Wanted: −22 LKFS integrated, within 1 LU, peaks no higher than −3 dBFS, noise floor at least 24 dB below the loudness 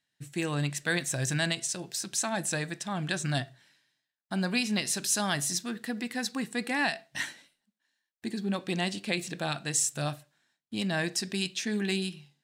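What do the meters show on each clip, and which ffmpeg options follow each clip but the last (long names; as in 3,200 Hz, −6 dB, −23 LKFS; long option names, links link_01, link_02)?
integrated loudness −31.0 LKFS; sample peak −15.0 dBFS; target loudness −22.0 LKFS
→ -af "volume=9dB"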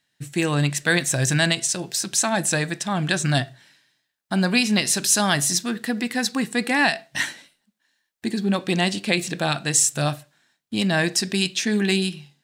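integrated loudness −22.0 LKFS; sample peak −6.0 dBFS; background noise floor −75 dBFS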